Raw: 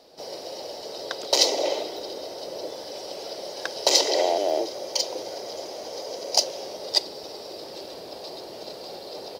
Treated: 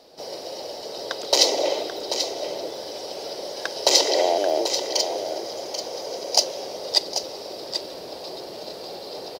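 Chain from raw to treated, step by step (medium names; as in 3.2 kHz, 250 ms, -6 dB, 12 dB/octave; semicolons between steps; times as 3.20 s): delay 787 ms -8.5 dB; trim +2 dB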